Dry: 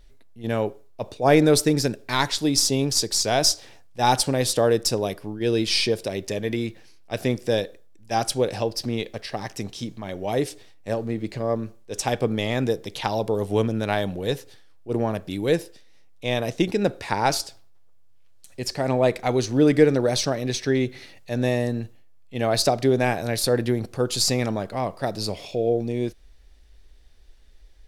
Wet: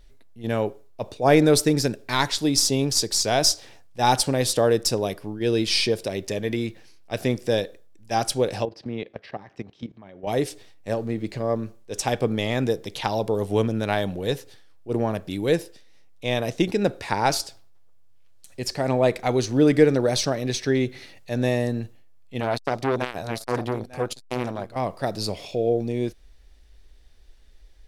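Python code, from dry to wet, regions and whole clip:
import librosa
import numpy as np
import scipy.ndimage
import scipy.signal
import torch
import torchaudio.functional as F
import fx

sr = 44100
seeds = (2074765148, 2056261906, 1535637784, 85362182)

y = fx.chain(x, sr, fx.bandpass_edges(low_hz=100.0, high_hz=2500.0),
    fx.level_steps(step_db=15), at=(8.65, 10.27))
y = fx.chain(y, sr, fx.echo_single(ms=895, db=-16.0),
    fx.transformer_sat(knee_hz=1200.0), at=(22.4, 24.76))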